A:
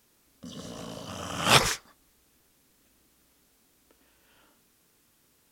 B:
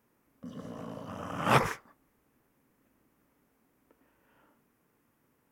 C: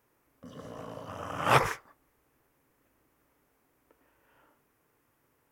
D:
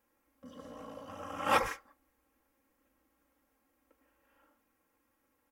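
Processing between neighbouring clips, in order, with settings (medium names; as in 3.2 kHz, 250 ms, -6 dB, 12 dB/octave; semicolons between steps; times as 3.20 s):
graphic EQ 125/250/500/1000/2000/4000/8000 Hz +7/+7/+5/+7/+5/-10/-6 dB; trim -9 dB
peaking EQ 210 Hz -10.5 dB 0.75 oct; trim +2 dB
comb 3.7 ms, depth 99%; trim -7.5 dB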